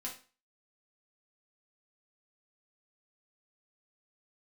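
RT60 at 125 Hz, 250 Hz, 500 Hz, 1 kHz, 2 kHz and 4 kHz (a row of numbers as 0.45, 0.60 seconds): 0.35, 0.40, 0.35, 0.35, 0.35, 0.35 seconds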